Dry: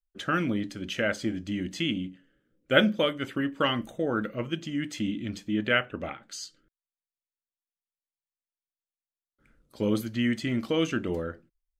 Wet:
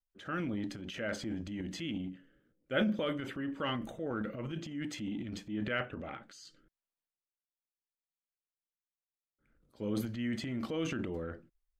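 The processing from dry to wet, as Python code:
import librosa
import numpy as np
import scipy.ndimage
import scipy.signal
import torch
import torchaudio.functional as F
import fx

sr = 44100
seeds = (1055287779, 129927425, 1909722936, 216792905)

y = fx.high_shelf(x, sr, hz=3200.0, db=-8.0)
y = fx.transient(y, sr, attack_db=-3, sustain_db=10)
y = y * 10.0 ** (-8.5 / 20.0)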